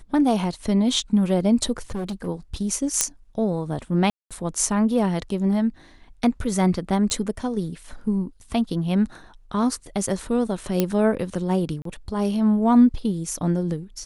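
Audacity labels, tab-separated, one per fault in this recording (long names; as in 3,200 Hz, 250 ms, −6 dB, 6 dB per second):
1.900000	2.280000	clipping −25 dBFS
3.010000	3.010000	click −2 dBFS
4.100000	4.310000	drop-out 206 ms
7.100000	7.100000	click −14 dBFS
10.800000	10.800000	click −6 dBFS
11.820000	11.850000	drop-out 33 ms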